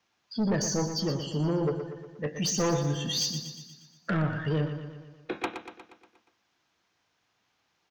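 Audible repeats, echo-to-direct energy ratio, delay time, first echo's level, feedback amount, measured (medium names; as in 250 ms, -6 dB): 6, -7.5 dB, 119 ms, -9.0 dB, 57%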